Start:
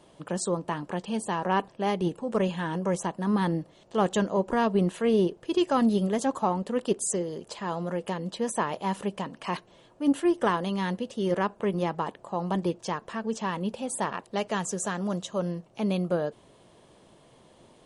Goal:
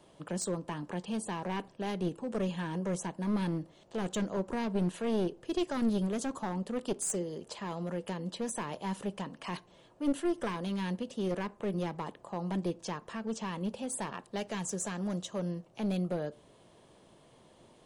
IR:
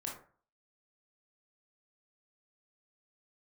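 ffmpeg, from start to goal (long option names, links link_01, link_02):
-filter_complex "[0:a]acrossover=split=360|3000[link_01][link_02][link_03];[link_02]acompressor=threshold=-40dB:ratio=1.5[link_04];[link_01][link_04][link_03]amix=inputs=3:normalize=0,aeval=exprs='clip(val(0),-1,0.0501)':channel_layout=same,asplit=2[link_05][link_06];[1:a]atrim=start_sample=2205[link_07];[link_06][link_07]afir=irnorm=-1:irlink=0,volume=-19dB[link_08];[link_05][link_08]amix=inputs=2:normalize=0,volume=-4dB"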